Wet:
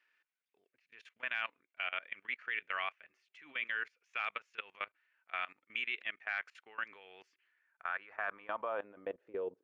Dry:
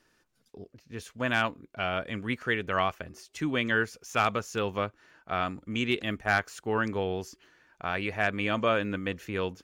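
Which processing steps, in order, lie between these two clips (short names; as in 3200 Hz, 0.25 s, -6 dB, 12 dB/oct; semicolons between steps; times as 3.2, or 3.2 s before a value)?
band-pass sweep 2300 Hz -> 410 Hz, 7.41–9.63; tone controls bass -8 dB, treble -9 dB; level quantiser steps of 20 dB; gain +3.5 dB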